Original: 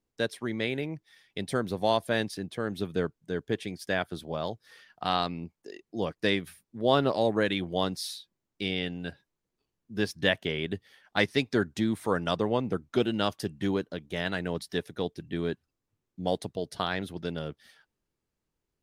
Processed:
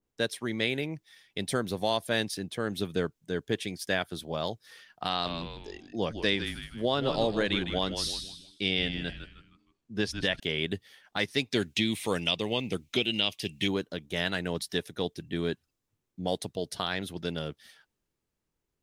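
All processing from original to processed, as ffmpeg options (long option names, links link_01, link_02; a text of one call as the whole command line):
ffmpeg -i in.wav -filter_complex "[0:a]asettb=1/sr,asplit=3[link_01][link_02][link_03];[link_01]atrim=end=5.094[link_04];[link_02]atrim=start=5.09:end=10.4,asetpts=PTS-STARTPTS,afade=type=in:duration=0.004:curve=qsin,afade=type=out:start_time=5.306:duration=0.004:curve=qsin,lowpass=8000,asplit=5[link_05][link_06][link_07][link_08][link_09];[link_06]adelay=156,afreqshift=-120,volume=-9dB[link_10];[link_07]adelay=312,afreqshift=-240,volume=-17.2dB[link_11];[link_08]adelay=468,afreqshift=-360,volume=-25.4dB[link_12];[link_09]adelay=624,afreqshift=-480,volume=-33.5dB[link_13];[link_05][link_10][link_11][link_12][link_13]amix=inputs=5:normalize=0,atrim=end_sample=234171[link_14];[link_03]atrim=start=10.396[link_15];[link_04][link_14]acrossfade=duration=0.004:curve1=hsin:curve2=qsin[link_16];[link_16][link_15]acrossfade=duration=0.004:curve1=qsin:curve2=hsin,asettb=1/sr,asplit=3[link_17][link_18][link_19];[link_17]atrim=end=11.534[link_20];[link_18]atrim=start=11.53:end=13.68,asetpts=PTS-STARTPTS,afade=type=in:duration=0.004:curve=qsin,afade=type=out:start_time=2.146:duration=0.004:curve=qsin,acrossover=split=3800[link_21][link_22];[link_22]acompressor=threshold=-52dB:ratio=4:attack=1:release=60[link_23];[link_21][link_23]amix=inputs=2:normalize=0,highshelf=frequency=1900:width_type=q:width=3:gain=8[link_24];[link_19]atrim=start=13.676[link_25];[link_20][link_24]acrossfade=duration=0.004:curve1=hsin:curve2=qsin[link_26];[link_26][link_25]acrossfade=duration=0.004:curve1=qsin:curve2=hsin,equalizer=frequency=4600:width_type=o:width=0.23:gain=-2,alimiter=limit=-16dB:level=0:latency=1:release=362,adynamicequalizer=threshold=0.00447:dfrequency=2300:dqfactor=0.7:tfrequency=2300:tqfactor=0.7:attack=5:release=100:ratio=0.375:range=3.5:mode=boostabove:tftype=highshelf" out.wav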